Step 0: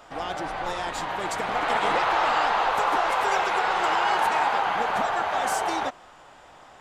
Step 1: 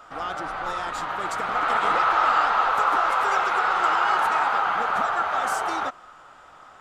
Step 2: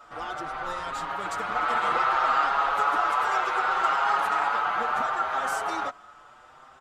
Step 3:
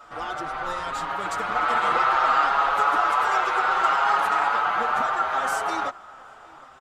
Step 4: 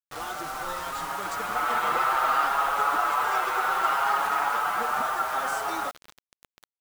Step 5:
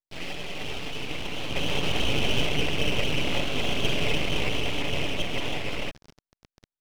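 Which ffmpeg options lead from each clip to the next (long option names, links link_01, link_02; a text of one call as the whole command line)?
ffmpeg -i in.wav -af "equalizer=frequency=1300:width_type=o:width=0.37:gain=13,volume=-3dB" out.wav
ffmpeg -i in.wav -filter_complex "[0:a]asplit=2[link_01][link_02];[link_02]adelay=6.5,afreqshift=0.66[link_03];[link_01][link_03]amix=inputs=2:normalize=1" out.wav
ffmpeg -i in.wav -filter_complex "[0:a]asplit=2[link_01][link_02];[link_02]adelay=758,volume=-22dB,highshelf=frequency=4000:gain=-17.1[link_03];[link_01][link_03]amix=inputs=2:normalize=0,volume=3dB" out.wav
ffmpeg -i in.wav -af "acrusher=bits=5:mix=0:aa=0.000001,volume=-3.5dB" out.wav
ffmpeg -i in.wav -af "highpass=frequency=580:width_type=q:width=0.5412,highpass=frequency=580:width_type=q:width=1.307,lowpass=frequency=3300:width_type=q:width=0.5176,lowpass=frequency=3300:width_type=q:width=0.7071,lowpass=frequency=3300:width_type=q:width=1.932,afreqshift=240,aeval=exprs='abs(val(0))':channel_layout=same,adynamicequalizer=threshold=0.01:dfrequency=2600:dqfactor=0.7:tfrequency=2600:tqfactor=0.7:attack=5:release=100:ratio=0.375:range=2:mode=cutabove:tftype=highshelf,volume=3dB" out.wav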